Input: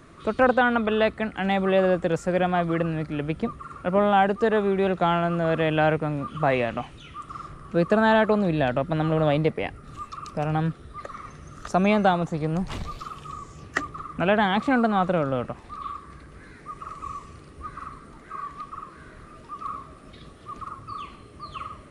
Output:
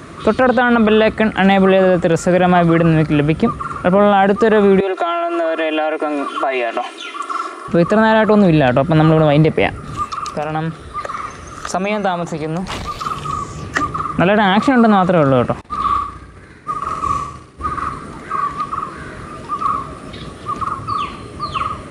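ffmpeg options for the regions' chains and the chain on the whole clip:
ffmpeg -i in.wav -filter_complex "[0:a]asettb=1/sr,asplit=3[link_01][link_02][link_03];[link_01]atrim=end=4.804[link_04];[link_02]atrim=start=4.8:end=7.68,asetpts=PTS-STARTPTS,afade=type=in:duration=0.004:curve=qsin,afade=type=out:start_time=2.876:duration=0.004:curve=qsin,highpass=frequency=350:width=0.5412,highpass=frequency=350:width=1.3066,aecho=1:1:2.9:0.97,atrim=end_sample=127008,acompressor=threshold=-30dB:ratio=8:attack=3.2:release=140:knee=1:detection=peak[link_05];[link_03]atrim=start=7.676[link_06];[link_04][link_05]acrossfade=duration=0.004:curve1=hsin:curve2=qsin[link_07];[link_07][link_06]acrossfade=duration=0.004:curve1=qsin:curve2=hsin,asettb=1/sr,asplit=3[link_08][link_09][link_10];[link_08]atrim=end=10.074[link_11];[link_09]atrim=start=10.07:end=13.04,asetpts=PTS-STARTPTS,afade=type=in:duration=0.004:curve=qsin,afade=type=out:start_time=2.966:duration=0.004:curve=qsin,equalizer=frequency=140:width_type=o:width=2.6:gain=-6,acompressor=threshold=-34dB:ratio=2.5:attack=3.2:release=140:knee=1:detection=peak,bandreject=frequency=50:width_type=h:width=6,bandreject=frequency=100:width_type=h:width=6,bandreject=frequency=150:width_type=h:width=6,bandreject=frequency=200:width_type=h:width=6,bandreject=frequency=250:width_type=h:width=6,bandreject=frequency=300:width_type=h:width=6,bandreject=frequency=350:width_type=h:width=6[link_12];[link_10]atrim=start=13.036[link_13];[link_11][link_12]acrossfade=duration=0.004:curve1=hsin:curve2=qsin[link_14];[link_14][link_13]acrossfade=duration=0.004:curve1=qsin:curve2=hsin,asettb=1/sr,asplit=3[link_15][link_16][link_17];[link_15]atrim=end=15.614[link_18];[link_16]atrim=start=15.61:end=17.89,asetpts=PTS-STARTPTS,afade=type=in:duration=0.004:curve=qsin,afade=type=out:start_time=2.276:duration=0.004:curve=qsin,agate=range=-33dB:threshold=-38dB:ratio=3:release=100:detection=peak,aecho=1:1:65|130|195|260|325:0.668|0.281|0.118|0.0495|0.0208,atrim=end_sample=100548[link_19];[link_17]atrim=start=17.886[link_20];[link_18][link_19]acrossfade=duration=0.004:curve1=hsin:curve2=qsin[link_21];[link_21][link_20]acrossfade=duration=0.004:curve1=qsin:curve2=hsin,highpass=61,alimiter=level_in=17.5dB:limit=-1dB:release=50:level=0:latency=1,volume=-2dB" out.wav

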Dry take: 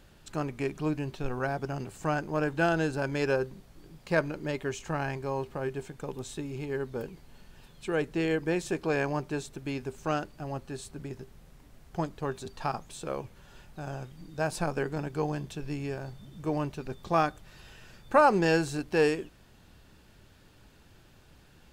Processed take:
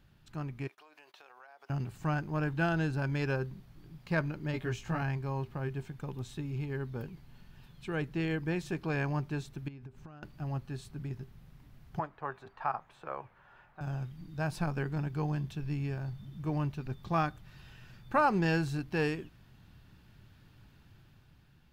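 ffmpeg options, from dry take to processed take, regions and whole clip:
ffmpeg -i in.wav -filter_complex "[0:a]asettb=1/sr,asplit=3[link_01][link_02][link_03];[link_01]atrim=end=0.674[link_04];[link_02]atrim=start=0.67:end=1.7,asetpts=PTS-STARTPTS,afade=type=in:duration=0.004:curve=qsin,afade=type=out:start_time=1.026:duration=0.004:curve=qsin,highpass=frequency=550:width=0.5412,highpass=frequency=550:width=1.3066,agate=range=-20dB:threshold=-56dB:ratio=16:release=100:detection=peak,acompressor=threshold=-45dB:ratio=12:attack=3.2:release=140:knee=1:detection=peak[link_05];[link_03]atrim=start=1.696[link_06];[link_04][link_05]acrossfade=duration=0.004:curve1=hsin:curve2=qsin[link_07];[link_07][link_06]acrossfade=duration=0.004:curve1=qsin:curve2=hsin,asettb=1/sr,asplit=3[link_08][link_09][link_10];[link_08]atrim=end=4.524[link_11];[link_09]atrim=start=4.52:end=5.02,asetpts=PTS-STARTPTS,afade=type=in:duration=0.004:curve=qsin,afade=type=out:start_time=0.496:duration=0.004:curve=qsin,bandreject=frequency=1000:width=23,asplit=2[link_12][link_13];[link_13]adelay=17,volume=-2.5dB[link_14];[link_12][link_14]amix=inputs=2:normalize=0,atrim=end_sample=22050[link_15];[link_10]atrim=start=5.016[link_16];[link_11][link_15]acrossfade=duration=0.004:curve1=hsin:curve2=qsin[link_17];[link_17][link_16]acrossfade=duration=0.004:curve1=qsin:curve2=hsin,asettb=1/sr,asplit=3[link_18][link_19][link_20];[link_18]atrim=end=9.684[link_21];[link_19]atrim=start=9.68:end=10.23,asetpts=PTS-STARTPTS,afade=type=in:duration=0.004:curve=qsin,afade=type=out:start_time=0.546:duration=0.004:curve=qsin,highshelf=frequency=3400:gain=-11.5,acompressor=threshold=-43dB:ratio=12:attack=3.2:release=140:knee=1:detection=peak[link_22];[link_20]atrim=start=10.226[link_23];[link_21][link_22]acrossfade=duration=0.004:curve1=hsin:curve2=qsin[link_24];[link_24][link_23]acrossfade=duration=0.004:curve1=qsin:curve2=hsin,asettb=1/sr,asplit=3[link_25][link_26][link_27];[link_25]atrim=end=11.994[link_28];[link_26]atrim=start=11.99:end=13.81,asetpts=PTS-STARTPTS,afade=type=in:duration=0.004:curve=qsin,afade=type=out:start_time=1.816:duration=0.004:curve=qsin,acrossover=split=510 2000:gain=0.0891 1 0.0708[link_29][link_30][link_31];[link_29][link_30][link_31]amix=inputs=3:normalize=0,acontrast=53[link_32];[link_27]atrim=start=13.806[link_33];[link_28][link_32]acrossfade=duration=0.004:curve1=hsin:curve2=qsin[link_34];[link_34][link_33]acrossfade=duration=0.004:curve1=qsin:curve2=hsin,equalizer=frequency=125:width_type=o:width=1:gain=8,equalizer=frequency=500:width_type=o:width=1:gain=-7,equalizer=frequency=8000:width_type=o:width=1:gain=-9,dynaudnorm=framelen=260:gausssize=7:maxgain=5dB,volume=-8dB" out.wav

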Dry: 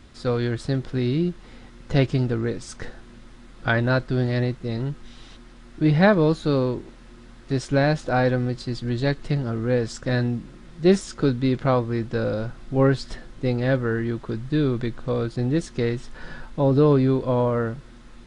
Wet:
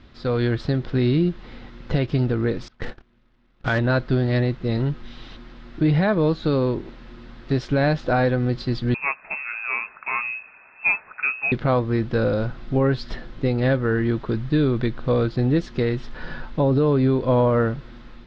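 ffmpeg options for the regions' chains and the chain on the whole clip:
ffmpeg -i in.wav -filter_complex "[0:a]asettb=1/sr,asplit=3[link_01][link_02][link_03];[link_01]atrim=end=2.684[link_04];[link_02]atrim=start=2.68:end=3.79,asetpts=PTS-STARTPTS,afade=type=in:duration=0.004:curve=qsin,afade=type=out:start_time=1.106:duration=0.004:curve=qsin,lowpass=frequency=3600:width=0.5412,lowpass=frequency=3600:width=1.3066,agate=range=-21dB:threshold=-39dB:ratio=16:release=100:detection=peak,acrusher=bits=3:mode=log:mix=0:aa=0.000001[link_05];[link_03]atrim=start=3.786[link_06];[link_04][link_05]acrossfade=duration=0.004:curve1=hsin:curve2=qsin[link_07];[link_07][link_06]acrossfade=duration=0.004:curve1=qsin:curve2=hsin,asettb=1/sr,asplit=3[link_08][link_09][link_10];[link_08]atrim=end=8.944[link_11];[link_09]atrim=start=8.94:end=11.52,asetpts=PTS-STARTPTS,afade=type=in:duration=0.004:curve=qsin,afade=type=out:start_time=2.576:duration=0.004:curve=qsin,highpass=330,equalizer=frequency=470:width_type=o:width=0.54:gain=-12.5,lowpass=frequency=2400:width_type=q:width=0.5098,lowpass=frequency=2400:width_type=q:width=0.6013,lowpass=frequency=2400:width_type=q:width=0.9,lowpass=frequency=2400:width_type=q:width=2.563,afreqshift=-2800[link_12];[link_10]atrim=start=11.516[link_13];[link_11][link_12]acrossfade=duration=0.004:curve1=hsin:curve2=qsin[link_14];[link_14][link_13]acrossfade=duration=0.004:curve1=qsin:curve2=hsin,lowpass=frequency=4600:width=0.5412,lowpass=frequency=4600:width=1.3066,alimiter=limit=-15.5dB:level=0:latency=1:release=206,dynaudnorm=framelen=120:gausssize=5:maxgain=4.5dB" out.wav

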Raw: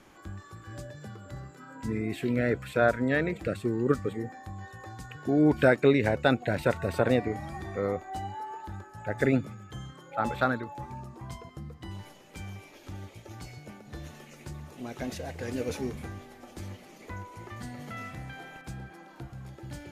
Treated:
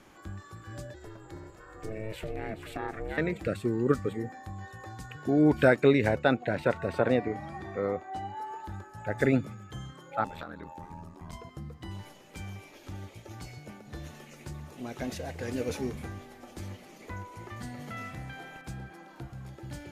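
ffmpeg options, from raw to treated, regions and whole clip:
ffmpeg -i in.wav -filter_complex "[0:a]asettb=1/sr,asplit=3[link_01][link_02][link_03];[link_01]atrim=end=0.944[link_04];[link_02]atrim=start=0.94:end=3.18,asetpts=PTS-STARTPTS,afade=type=in:duration=0.004:curve=qsin,afade=type=out:start_time=2.236:duration=0.004:curve=qsin,acompressor=threshold=-29dB:ratio=4:attack=3.2:release=140:knee=1:detection=peak,aeval=exprs='val(0)*sin(2*PI*220*n/s)':channel_layout=same,aecho=1:1:427:0.266,atrim=end_sample=98784[link_05];[link_03]atrim=start=3.176[link_06];[link_04][link_05]acrossfade=duration=0.004:curve1=hsin:curve2=qsin[link_07];[link_07][link_06]acrossfade=duration=0.004:curve1=qsin:curve2=hsin,asettb=1/sr,asplit=3[link_08][link_09][link_10];[link_08]atrim=end=6.194[link_11];[link_09]atrim=start=6.19:end=8.37,asetpts=PTS-STARTPTS,afade=type=in:duration=0.004:curve=qsin,afade=type=out:start_time=2.176:duration=0.004:curve=qsin,highpass=frequency=140:poles=1,aemphasis=mode=reproduction:type=50kf[link_12];[link_10]atrim=start=8.366[link_13];[link_11][link_12]acrossfade=duration=0.004:curve1=hsin:curve2=qsin[link_14];[link_14][link_13]acrossfade=duration=0.004:curve1=qsin:curve2=hsin,asettb=1/sr,asplit=3[link_15][link_16][link_17];[link_15]atrim=end=10.244[link_18];[link_16]atrim=start=10.24:end=11.33,asetpts=PTS-STARTPTS,afade=type=in:duration=0.004:curve=qsin,afade=type=out:start_time=1.086:duration=0.004:curve=qsin,aeval=exprs='val(0)*sin(2*PI*41*n/s)':channel_layout=same,acompressor=threshold=-37dB:ratio=6:attack=3.2:release=140:knee=1:detection=peak[link_19];[link_17]atrim=start=11.326[link_20];[link_18][link_19]acrossfade=duration=0.004:curve1=hsin:curve2=qsin[link_21];[link_21][link_20]acrossfade=duration=0.004:curve1=qsin:curve2=hsin" out.wav

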